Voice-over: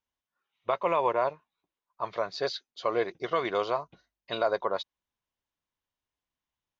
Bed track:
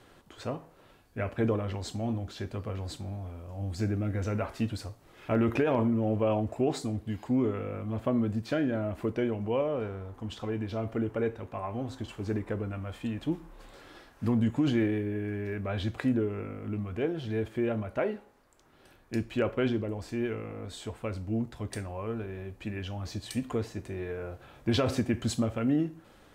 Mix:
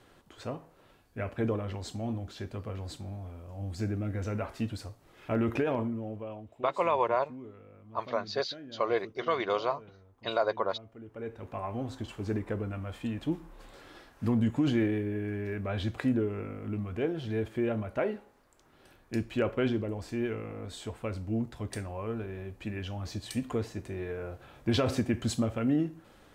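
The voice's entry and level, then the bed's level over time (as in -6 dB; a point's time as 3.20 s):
5.95 s, -1.0 dB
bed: 5.67 s -2.5 dB
6.51 s -18 dB
10.99 s -18 dB
11.49 s -0.5 dB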